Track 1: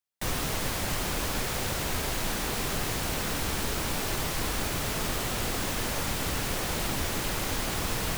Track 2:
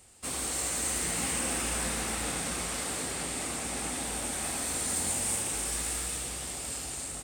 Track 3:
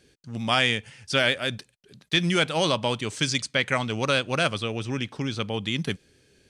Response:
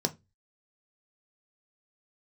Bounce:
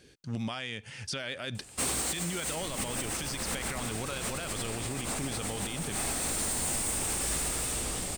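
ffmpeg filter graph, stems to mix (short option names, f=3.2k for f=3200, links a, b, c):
-filter_complex "[0:a]afwtdn=0.0316,adelay=2400,volume=-4dB[a];[1:a]asoftclip=type=hard:threshold=-33.5dB,adelay=1550,volume=2.5dB[b];[2:a]acompressor=threshold=-30dB:ratio=5,volume=2dB[c];[b][c]amix=inputs=2:normalize=0,dynaudnorm=f=110:g=17:m=7dB,alimiter=limit=-18dB:level=0:latency=1:release=52,volume=0dB[d];[a][d]amix=inputs=2:normalize=0,alimiter=level_in=1.5dB:limit=-24dB:level=0:latency=1:release=285,volume=-1.5dB"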